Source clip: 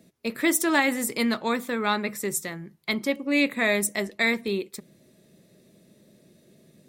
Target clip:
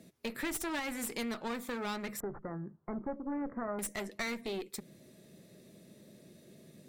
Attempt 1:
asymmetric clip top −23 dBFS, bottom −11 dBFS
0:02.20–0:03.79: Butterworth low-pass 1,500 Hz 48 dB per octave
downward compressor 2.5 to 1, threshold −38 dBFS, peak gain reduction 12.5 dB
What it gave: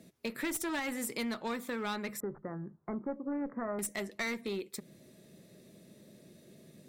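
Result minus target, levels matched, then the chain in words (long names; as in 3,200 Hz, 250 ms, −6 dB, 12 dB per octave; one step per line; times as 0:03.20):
asymmetric clip: distortion −5 dB
asymmetric clip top −32.5 dBFS, bottom −11 dBFS
0:02.20–0:03.79: Butterworth low-pass 1,500 Hz 48 dB per octave
downward compressor 2.5 to 1, threshold −38 dBFS, peak gain reduction 12 dB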